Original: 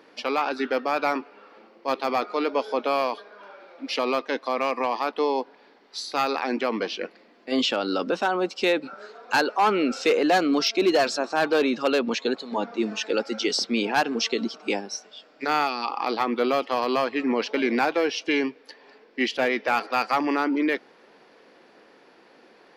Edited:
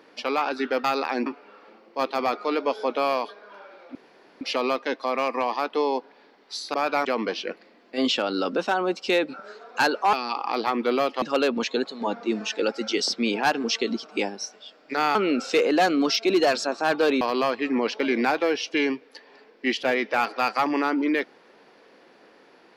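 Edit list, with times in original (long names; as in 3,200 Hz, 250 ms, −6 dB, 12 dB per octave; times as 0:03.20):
0:00.84–0:01.15: swap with 0:06.17–0:06.59
0:03.84: splice in room tone 0.46 s
0:09.67–0:11.73: swap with 0:15.66–0:16.75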